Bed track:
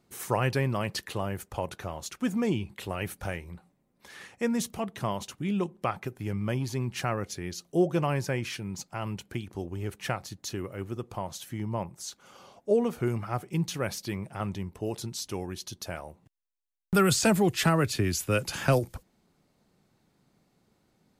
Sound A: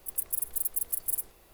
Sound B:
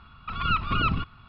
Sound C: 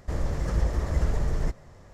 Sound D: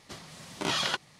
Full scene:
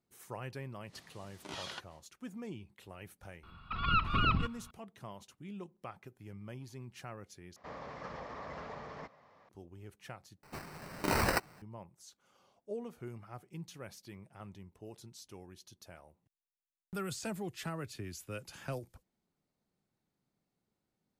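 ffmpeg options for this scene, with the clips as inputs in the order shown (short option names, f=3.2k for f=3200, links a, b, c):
-filter_complex "[4:a]asplit=2[a][b];[0:a]volume=-16.5dB[c];[a]acompressor=mode=upward:threshold=-40dB:ratio=2.5:attack=3.2:release=140:knee=2.83:detection=peak[d];[3:a]highpass=270,equalizer=f=350:t=q:w=4:g=-9,equalizer=f=790:t=q:w=4:g=3,equalizer=f=1.1k:t=q:w=4:g=8,equalizer=f=2.3k:t=q:w=4:g=4,lowpass=f=4.7k:w=0.5412,lowpass=f=4.7k:w=1.3066[e];[b]acrusher=samples=13:mix=1:aa=0.000001[f];[c]asplit=3[g][h][i];[g]atrim=end=7.564[j];[e]atrim=end=1.93,asetpts=PTS-STARTPTS,volume=-8.5dB[k];[h]atrim=start=9.486:end=10.434[l];[f]atrim=end=1.19,asetpts=PTS-STARTPTS,volume=-0.5dB[m];[i]atrim=start=11.616[n];[d]atrim=end=1.19,asetpts=PTS-STARTPTS,volume=-15dB,afade=t=in:d=0.1,afade=t=out:st=1.09:d=0.1,adelay=840[o];[2:a]atrim=end=1.28,asetpts=PTS-STARTPTS,volume=-4.5dB,afade=t=in:d=0.004:c=hsin,afade=t=out:st=1.276:d=0.004:c=hsin,adelay=3430[p];[j][k]acrossfade=d=0.004:c1=hsin:c2=hsin[q];[q][l]acrossfade=d=0.004:c1=hsin:c2=hsin[r];[r][m]acrossfade=d=0.004:c1=hsin:c2=hsin[s];[s][n]acrossfade=d=0.004:c1=hsin:c2=hsin[t];[t][o][p]amix=inputs=3:normalize=0"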